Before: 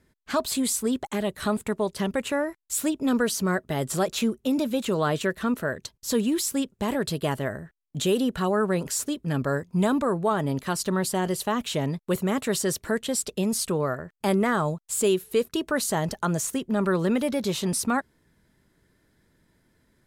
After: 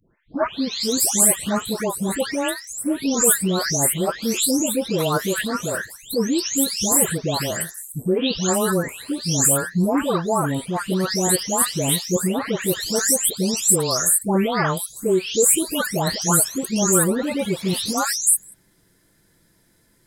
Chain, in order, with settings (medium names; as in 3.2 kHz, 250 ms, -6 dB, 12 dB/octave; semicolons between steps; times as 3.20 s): delay that grows with frequency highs late, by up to 533 ms; tone controls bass -1 dB, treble +9 dB; trim +5 dB